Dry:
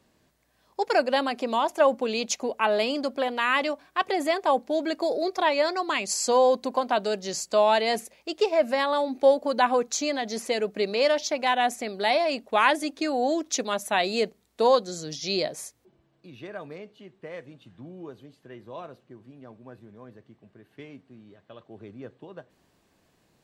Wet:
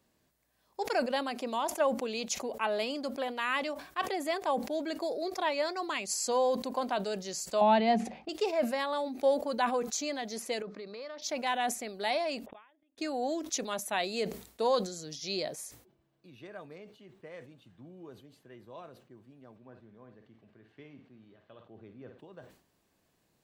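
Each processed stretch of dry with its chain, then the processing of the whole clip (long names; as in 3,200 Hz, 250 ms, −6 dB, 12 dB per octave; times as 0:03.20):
0:07.61–0:08.29: Chebyshev low-pass filter 3,200 Hz + hollow resonant body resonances 210/750 Hz, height 16 dB, ringing for 35 ms + one half of a high-frequency compander decoder only
0:10.62–0:11.22: downward compressor 4 to 1, threshold −33 dBFS + loudspeaker in its box 110–5,000 Hz, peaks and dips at 730 Hz −5 dB, 1,200 Hz +7 dB, 2,900 Hz −9 dB
0:12.46–0:12.98: linear-phase brick-wall low-pass 3,700 Hz + gate with flip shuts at −24 dBFS, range −39 dB
0:19.56–0:22.19: high-frequency loss of the air 130 metres + flutter between parallel walls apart 9.2 metres, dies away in 0.32 s + one half of a high-frequency compander encoder only
whole clip: high-shelf EQ 9,800 Hz +9 dB; level that may fall only so fast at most 110 dB per second; level −8 dB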